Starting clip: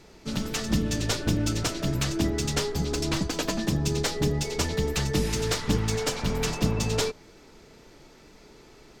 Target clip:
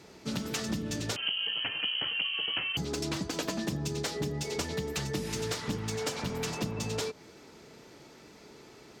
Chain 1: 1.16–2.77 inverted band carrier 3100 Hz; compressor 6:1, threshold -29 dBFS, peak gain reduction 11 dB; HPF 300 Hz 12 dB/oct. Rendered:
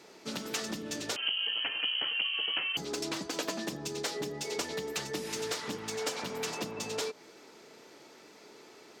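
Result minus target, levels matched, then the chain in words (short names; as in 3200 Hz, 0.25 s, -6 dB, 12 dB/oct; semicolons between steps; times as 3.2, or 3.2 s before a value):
125 Hz band -11.0 dB
1.16–2.77 inverted band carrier 3100 Hz; compressor 6:1, threshold -29 dBFS, peak gain reduction 11 dB; HPF 98 Hz 12 dB/oct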